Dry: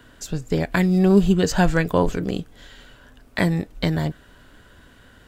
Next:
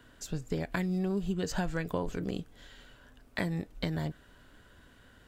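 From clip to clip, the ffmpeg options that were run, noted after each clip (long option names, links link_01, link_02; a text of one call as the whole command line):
ffmpeg -i in.wav -af "acompressor=threshold=-20dB:ratio=6,volume=-8dB" out.wav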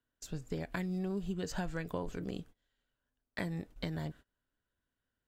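ffmpeg -i in.wav -af "agate=range=-25dB:threshold=-46dB:ratio=16:detection=peak,volume=-5dB" out.wav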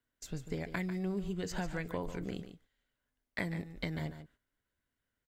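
ffmpeg -i in.wav -af "equalizer=frequency=2100:width_type=o:width=0.2:gain=9,aecho=1:1:145:0.282" out.wav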